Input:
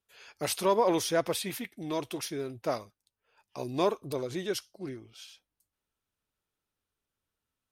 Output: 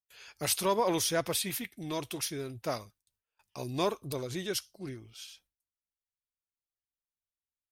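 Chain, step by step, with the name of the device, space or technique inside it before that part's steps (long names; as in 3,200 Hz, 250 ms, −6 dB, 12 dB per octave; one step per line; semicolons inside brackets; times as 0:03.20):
noise gate with hold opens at −54 dBFS
smiley-face EQ (low-shelf EQ 170 Hz +5.5 dB; parametric band 420 Hz −5.5 dB 3 octaves; high-shelf EQ 6,400 Hz +5 dB)
level +1 dB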